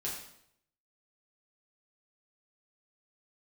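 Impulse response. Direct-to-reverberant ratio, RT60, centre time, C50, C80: -5.5 dB, 0.70 s, 42 ms, 4.0 dB, 6.5 dB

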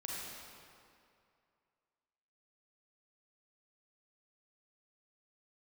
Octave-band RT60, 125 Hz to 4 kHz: 2.3, 2.3, 2.4, 2.4, 2.1, 1.7 s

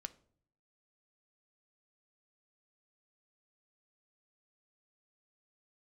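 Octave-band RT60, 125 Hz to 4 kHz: 0.90, 0.80, 0.65, 0.50, 0.40, 0.35 s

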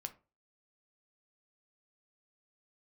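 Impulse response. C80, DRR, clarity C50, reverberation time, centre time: 23.5 dB, 7.0 dB, 16.5 dB, 0.35 s, 5 ms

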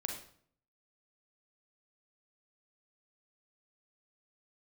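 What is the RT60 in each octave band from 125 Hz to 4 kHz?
0.80, 0.70, 0.60, 0.55, 0.50, 0.45 s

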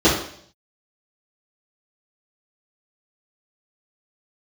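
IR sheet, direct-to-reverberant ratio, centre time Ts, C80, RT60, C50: -12.5 dB, 39 ms, 8.5 dB, 0.60 s, 4.5 dB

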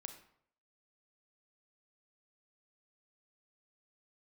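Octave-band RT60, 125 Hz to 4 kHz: 0.65, 0.60, 0.65, 0.65, 0.55, 0.45 s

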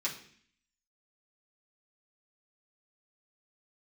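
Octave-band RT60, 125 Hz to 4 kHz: 0.70, 0.75, 0.60, 0.50, 0.70, 0.65 s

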